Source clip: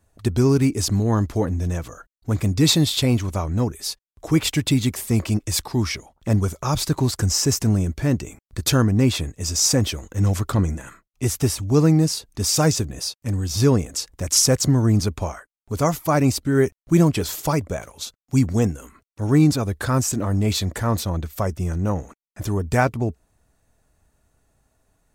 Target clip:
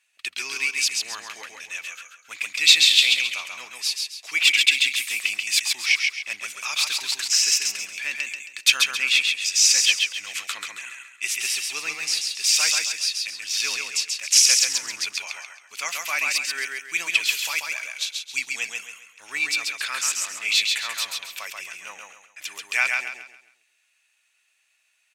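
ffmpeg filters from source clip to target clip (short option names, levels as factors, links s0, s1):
-af "highpass=f=2500:t=q:w=4.5,highshelf=f=11000:g=-12,aecho=1:1:135|270|405|540|675:0.668|0.234|0.0819|0.0287|0.01,volume=1.41"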